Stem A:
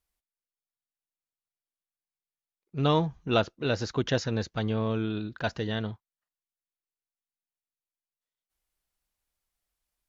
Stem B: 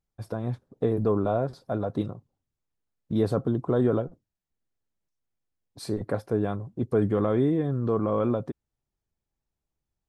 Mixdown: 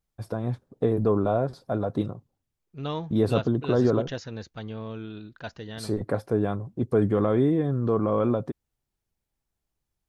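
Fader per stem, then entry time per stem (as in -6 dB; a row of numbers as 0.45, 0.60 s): -7.5, +1.5 dB; 0.00, 0.00 s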